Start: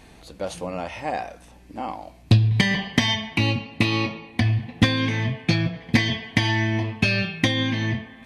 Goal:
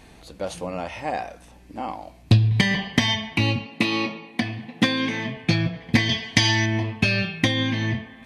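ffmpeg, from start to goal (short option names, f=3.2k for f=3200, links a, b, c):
-filter_complex "[0:a]asettb=1/sr,asplit=3[a][b][c];[a]atrim=end=3.674[d];[b]atrim=start=3.67:end=5.37,asetpts=PTS-STARTPTS,afade=t=in:d=0.004:c=qsin,afade=t=out:st=1.696:d=0.004:c=qsin,highpass=f=160:w=0.5412,highpass=f=160:w=1.3066[e];[c]atrim=start=5.366[f];[d][e]acrossfade=d=0.004:c1=hsin:c2=qsin[g];[g][f]acrossfade=d=0.004:c1=qsin:c2=hsin,asettb=1/sr,asplit=3[h][i][j];[h]atrim=end=6.094[k];[i]atrim=start=6.09:end=6.66,asetpts=PTS-STARTPTS,afade=t=in:d=0.004:c=qsin,afade=t=out:st=0.566:d=0.004:c=qsin,equalizer=f=5.9k:t=o:w=1.5:g=12.5[l];[j]atrim=start=6.656[m];[k][l]acrossfade=d=0.004:c1=hsin:c2=qsin[n];[n][m]acrossfade=d=0.004:c1=qsin:c2=hsin"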